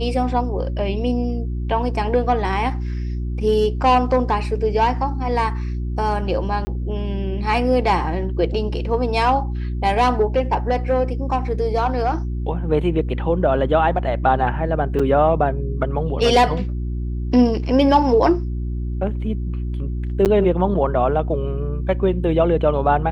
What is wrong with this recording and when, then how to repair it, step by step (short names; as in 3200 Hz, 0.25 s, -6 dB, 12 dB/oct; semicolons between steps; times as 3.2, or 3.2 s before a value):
hum 60 Hz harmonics 6 -24 dBFS
6.65–6.67 gap 20 ms
14.99–15 gap 5.2 ms
20.25–20.26 gap 8.8 ms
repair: de-hum 60 Hz, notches 6; interpolate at 6.65, 20 ms; interpolate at 14.99, 5.2 ms; interpolate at 20.25, 8.8 ms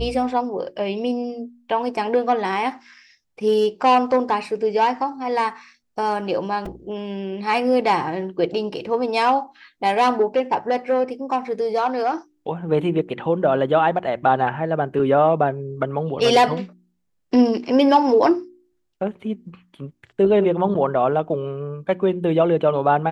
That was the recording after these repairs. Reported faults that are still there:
none